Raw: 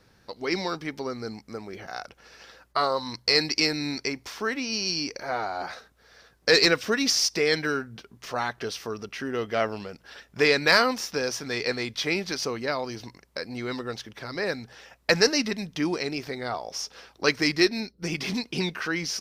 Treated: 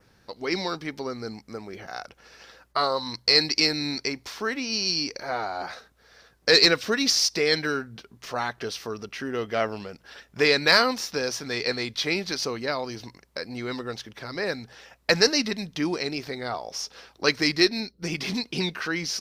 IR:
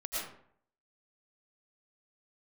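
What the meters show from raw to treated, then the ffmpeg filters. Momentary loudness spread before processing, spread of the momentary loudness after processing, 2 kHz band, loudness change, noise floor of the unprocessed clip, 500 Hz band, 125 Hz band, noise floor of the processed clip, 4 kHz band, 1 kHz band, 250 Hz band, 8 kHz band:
17 LU, 18 LU, 0.0 dB, +1.5 dB, -62 dBFS, 0.0 dB, 0.0 dB, -62 dBFS, +3.0 dB, 0.0 dB, 0.0 dB, +0.5 dB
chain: -af "adynamicequalizer=threshold=0.01:dfrequency=4100:dqfactor=3.6:tfrequency=4100:tqfactor=3.6:attack=5:release=100:ratio=0.375:range=2.5:mode=boostabove:tftype=bell"

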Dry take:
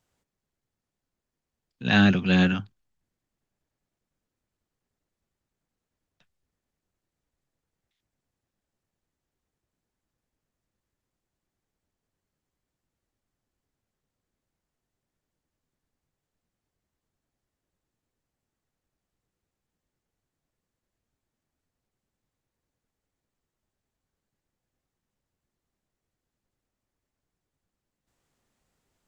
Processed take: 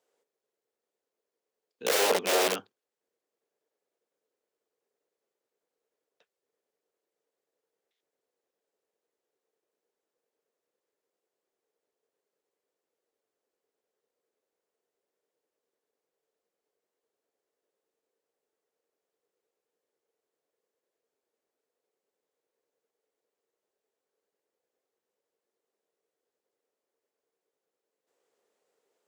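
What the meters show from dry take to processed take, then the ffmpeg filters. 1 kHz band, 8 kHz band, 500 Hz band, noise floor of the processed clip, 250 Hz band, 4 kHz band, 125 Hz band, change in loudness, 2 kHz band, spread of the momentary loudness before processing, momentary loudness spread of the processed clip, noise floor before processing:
+1.5 dB, no reading, +5.5 dB, under -85 dBFS, -19.0 dB, -0.5 dB, under -25 dB, -5.0 dB, -6.5 dB, 13 LU, 11 LU, under -85 dBFS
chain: -af "aeval=exprs='(mod(8.91*val(0)+1,2)-1)/8.91':c=same,highpass=f=450:t=q:w=4.9,volume=0.668"

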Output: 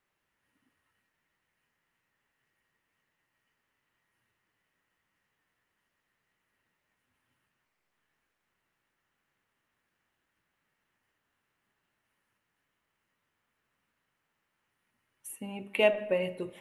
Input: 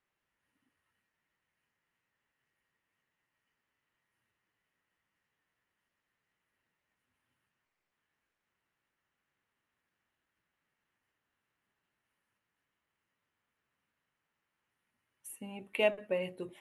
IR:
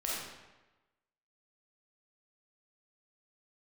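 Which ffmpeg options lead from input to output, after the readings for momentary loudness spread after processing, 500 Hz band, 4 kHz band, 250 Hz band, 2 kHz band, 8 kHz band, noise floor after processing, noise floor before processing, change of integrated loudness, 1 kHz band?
18 LU, +5.0 dB, +4.0 dB, +5.0 dB, +4.5 dB, +4.0 dB, -82 dBFS, under -85 dBFS, +5.0 dB, +4.5 dB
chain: -filter_complex "[0:a]asplit=2[s0][s1];[1:a]atrim=start_sample=2205,highshelf=f=4100:g=-11.5[s2];[s1][s2]afir=irnorm=-1:irlink=0,volume=0.168[s3];[s0][s3]amix=inputs=2:normalize=0,volume=1.5"

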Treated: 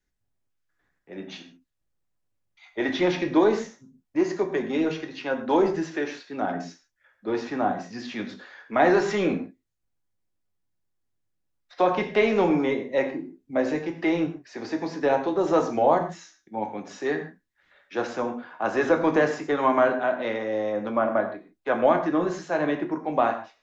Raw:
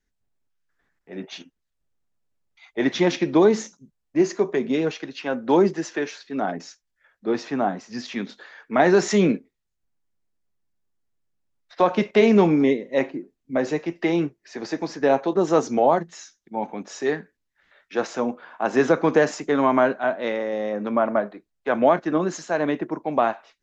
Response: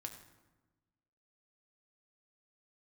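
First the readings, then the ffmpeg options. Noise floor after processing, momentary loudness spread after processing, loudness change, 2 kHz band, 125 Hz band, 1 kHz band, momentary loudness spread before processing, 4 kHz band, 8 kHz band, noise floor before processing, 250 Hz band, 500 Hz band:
-76 dBFS, 14 LU, -2.5 dB, -1.0 dB, -5.5 dB, -1.0 dB, 14 LU, -3.5 dB, no reading, -77 dBFS, -3.5 dB, -2.5 dB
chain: -filter_complex "[0:a]acrossover=split=4400[s0][s1];[s1]acompressor=threshold=0.00398:ratio=4:attack=1:release=60[s2];[s0][s2]amix=inputs=2:normalize=0,acrossover=split=340[s3][s4];[s3]asoftclip=type=tanh:threshold=0.0422[s5];[s5][s4]amix=inputs=2:normalize=0[s6];[1:a]atrim=start_sample=2205,afade=t=out:st=0.2:d=0.01,atrim=end_sample=9261[s7];[s6][s7]afir=irnorm=-1:irlink=0,volume=1.33"

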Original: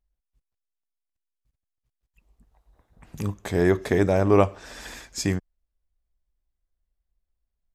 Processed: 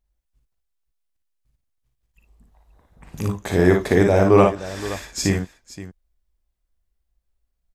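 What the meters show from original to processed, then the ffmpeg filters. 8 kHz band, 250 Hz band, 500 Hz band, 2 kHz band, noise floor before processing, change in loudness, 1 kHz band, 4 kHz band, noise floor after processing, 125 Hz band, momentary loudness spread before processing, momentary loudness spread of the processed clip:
+5.5 dB, +5.0 dB, +5.0 dB, +5.5 dB, -84 dBFS, +4.5 dB, +5.5 dB, +5.5 dB, -75 dBFS, +4.5 dB, 18 LU, 16 LU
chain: -af "aecho=1:1:41|56|78|522:0.398|0.596|0.106|0.178,volume=1.5"

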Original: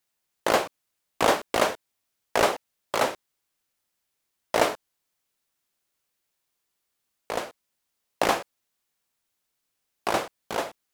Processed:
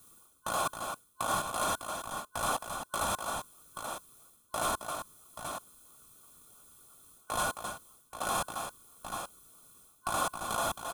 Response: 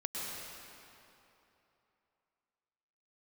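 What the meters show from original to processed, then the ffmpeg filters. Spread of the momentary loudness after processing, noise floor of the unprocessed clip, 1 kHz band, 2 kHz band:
22 LU, -80 dBFS, -4.5 dB, -7.0 dB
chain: -filter_complex "[0:a]areverse,acompressor=threshold=0.02:ratio=16,areverse,highshelf=f=3000:g=9.5,aecho=1:1:1.2:0.71,aecho=1:1:268|831:0.15|0.141,asplit=2[s0][s1];[s1]acrusher=samples=41:mix=1:aa=0.000001:lfo=1:lforange=41:lforate=3,volume=0.316[s2];[s0][s2]amix=inputs=2:normalize=0,alimiter=level_in=2.66:limit=0.0631:level=0:latency=1:release=34,volume=0.376,superequalizer=10b=3.98:11b=0.316:12b=0.501:14b=0.501:16b=2,volume=2.82"

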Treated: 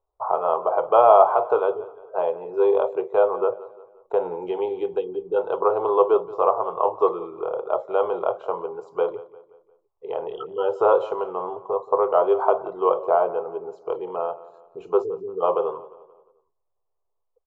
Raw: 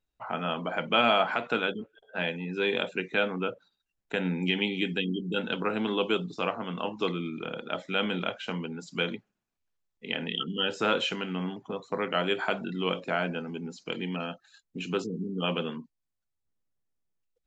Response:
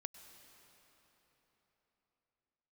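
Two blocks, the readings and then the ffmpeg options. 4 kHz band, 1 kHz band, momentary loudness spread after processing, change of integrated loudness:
under -15 dB, +11.0 dB, 12 LU, +7.5 dB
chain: -filter_complex "[0:a]firequalizer=gain_entry='entry(100,0);entry(220,-29);entry(390,10);entry(1100,13);entry(1700,-21);entry(6500,-19)':delay=0.05:min_phase=1,asplit=2[s0][s1];[s1]adelay=176,lowpass=f=4000:p=1,volume=0.133,asplit=2[s2][s3];[s3]adelay=176,lowpass=f=4000:p=1,volume=0.45,asplit=2[s4][s5];[s5]adelay=176,lowpass=f=4000:p=1,volume=0.45,asplit=2[s6][s7];[s7]adelay=176,lowpass=f=4000:p=1,volume=0.45[s8];[s2][s4][s6][s8]amix=inputs=4:normalize=0[s9];[s0][s9]amix=inputs=2:normalize=0,volume=1.19"

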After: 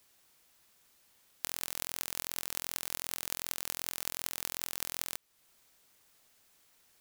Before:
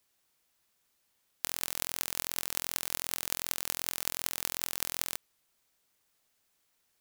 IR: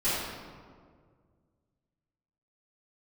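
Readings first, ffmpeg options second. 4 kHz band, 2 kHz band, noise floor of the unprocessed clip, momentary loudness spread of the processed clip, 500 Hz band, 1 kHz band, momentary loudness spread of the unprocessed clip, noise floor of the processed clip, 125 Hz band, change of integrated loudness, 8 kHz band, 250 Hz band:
-3.0 dB, -3.0 dB, -75 dBFS, 2 LU, -3.0 dB, -3.0 dB, 3 LU, -77 dBFS, -3.0 dB, -3.0 dB, -3.0 dB, -3.0 dB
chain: -af "acompressor=threshold=0.00501:ratio=2,volume=2.51"

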